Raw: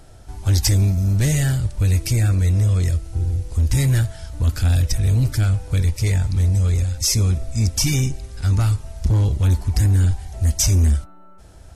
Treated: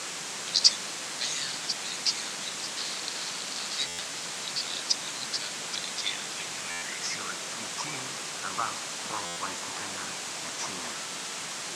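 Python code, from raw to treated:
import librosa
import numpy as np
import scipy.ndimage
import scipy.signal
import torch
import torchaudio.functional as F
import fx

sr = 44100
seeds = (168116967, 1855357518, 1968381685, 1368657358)

y = fx.reverse_delay(x, sr, ms=592, wet_db=-13.0)
y = fx.overflow_wrap(y, sr, gain_db=26.0, at=(2.77, 3.79))
y = fx.filter_sweep_bandpass(y, sr, from_hz=4300.0, to_hz=1100.0, start_s=5.8, end_s=7.64, q=4.7)
y = fx.hpss(y, sr, part='percussive', gain_db=7)
y = fx.quant_dither(y, sr, seeds[0], bits=6, dither='triangular')
y = scipy.signal.sosfilt(scipy.signal.cheby1(3, 1.0, [150.0, 7700.0], 'bandpass', fs=sr, output='sos'), y)
y = fx.buffer_glitch(y, sr, at_s=(3.87, 6.7, 9.25), block=512, repeats=9)
y = y * 10.0 ** (4.0 / 20.0)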